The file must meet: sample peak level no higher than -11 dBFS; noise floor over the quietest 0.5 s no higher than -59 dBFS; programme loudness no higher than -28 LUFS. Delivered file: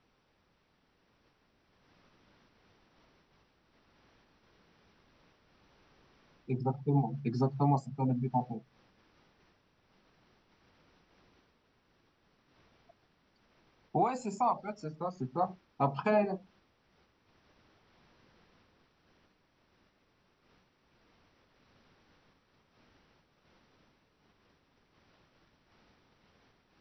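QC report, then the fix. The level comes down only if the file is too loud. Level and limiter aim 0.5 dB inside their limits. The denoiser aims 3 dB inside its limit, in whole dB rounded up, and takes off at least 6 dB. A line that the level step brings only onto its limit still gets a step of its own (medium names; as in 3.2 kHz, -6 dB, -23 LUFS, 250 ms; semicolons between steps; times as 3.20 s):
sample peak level -16.0 dBFS: pass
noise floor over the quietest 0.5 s -73 dBFS: pass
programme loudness -33.0 LUFS: pass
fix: none needed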